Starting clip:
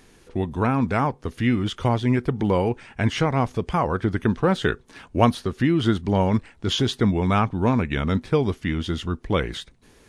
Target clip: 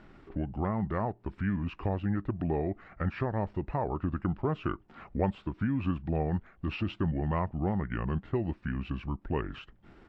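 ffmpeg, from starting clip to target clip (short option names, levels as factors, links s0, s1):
-af "asetrate=36028,aresample=44100,atempo=1.22405,acompressor=threshold=0.00631:ratio=1.5,lowpass=2000"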